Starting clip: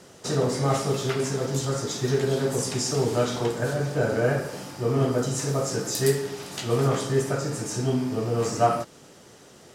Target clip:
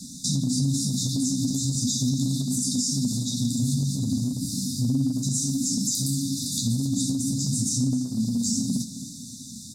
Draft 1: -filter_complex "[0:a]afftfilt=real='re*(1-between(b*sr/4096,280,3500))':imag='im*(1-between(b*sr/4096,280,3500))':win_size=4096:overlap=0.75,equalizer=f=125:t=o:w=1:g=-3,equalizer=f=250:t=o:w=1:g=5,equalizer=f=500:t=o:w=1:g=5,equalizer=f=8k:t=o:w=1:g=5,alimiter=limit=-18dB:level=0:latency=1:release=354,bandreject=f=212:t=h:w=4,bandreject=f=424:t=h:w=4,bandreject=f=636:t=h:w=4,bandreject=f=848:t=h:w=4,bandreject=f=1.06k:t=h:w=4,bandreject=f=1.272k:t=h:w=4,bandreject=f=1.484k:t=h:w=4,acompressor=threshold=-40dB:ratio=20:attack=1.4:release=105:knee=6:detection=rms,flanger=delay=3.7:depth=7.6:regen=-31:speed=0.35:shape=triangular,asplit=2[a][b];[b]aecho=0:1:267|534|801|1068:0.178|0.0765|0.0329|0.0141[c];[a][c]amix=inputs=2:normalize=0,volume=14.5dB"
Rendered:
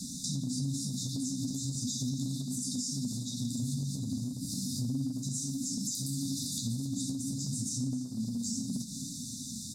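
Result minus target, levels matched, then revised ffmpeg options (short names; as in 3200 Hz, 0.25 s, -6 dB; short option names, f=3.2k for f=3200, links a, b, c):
compressor: peak gain reduction +9.5 dB
-filter_complex "[0:a]afftfilt=real='re*(1-between(b*sr/4096,280,3500))':imag='im*(1-between(b*sr/4096,280,3500))':win_size=4096:overlap=0.75,equalizer=f=125:t=o:w=1:g=-3,equalizer=f=250:t=o:w=1:g=5,equalizer=f=500:t=o:w=1:g=5,equalizer=f=8k:t=o:w=1:g=5,alimiter=limit=-18dB:level=0:latency=1:release=354,bandreject=f=212:t=h:w=4,bandreject=f=424:t=h:w=4,bandreject=f=636:t=h:w=4,bandreject=f=848:t=h:w=4,bandreject=f=1.06k:t=h:w=4,bandreject=f=1.272k:t=h:w=4,bandreject=f=1.484k:t=h:w=4,acompressor=threshold=-30dB:ratio=20:attack=1.4:release=105:knee=6:detection=rms,flanger=delay=3.7:depth=7.6:regen=-31:speed=0.35:shape=triangular,asplit=2[a][b];[b]aecho=0:1:267|534|801|1068:0.178|0.0765|0.0329|0.0141[c];[a][c]amix=inputs=2:normalize=0,volume=14.5dB"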